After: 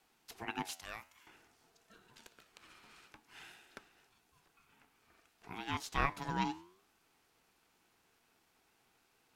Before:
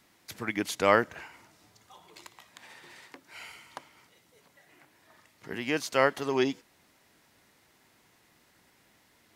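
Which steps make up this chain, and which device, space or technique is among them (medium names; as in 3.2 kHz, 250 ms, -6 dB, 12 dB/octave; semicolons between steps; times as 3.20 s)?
0.73–1.27 s: differentiator; alien voice (ring modulator 570 Hz; flange 0.54 Hz, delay 3.6 ms, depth 9.9 ms, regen +88%); trim -1.5 dB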